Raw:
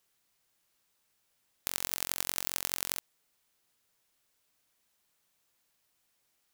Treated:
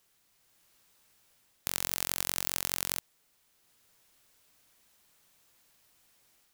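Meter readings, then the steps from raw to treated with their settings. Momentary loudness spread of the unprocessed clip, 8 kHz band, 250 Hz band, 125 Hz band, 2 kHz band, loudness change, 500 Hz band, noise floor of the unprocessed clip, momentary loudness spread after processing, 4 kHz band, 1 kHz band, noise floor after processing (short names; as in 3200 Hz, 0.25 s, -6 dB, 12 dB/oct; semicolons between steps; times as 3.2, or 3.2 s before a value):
5 LU, +1.5 dB, +3.0 dB, +4.5 dB, +1.5 dB, +1.5 dB, +2.0 dB, -76 dBFS, 5 LU, +1.5 dB, +1.5 dB, -71 dBFS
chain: low shelf 180 Hz +3 dB; AGC gain up to 4 dB; in parallel at -7 dB: wavefolder -11 dBFS; on the sum: gain +1.5 dB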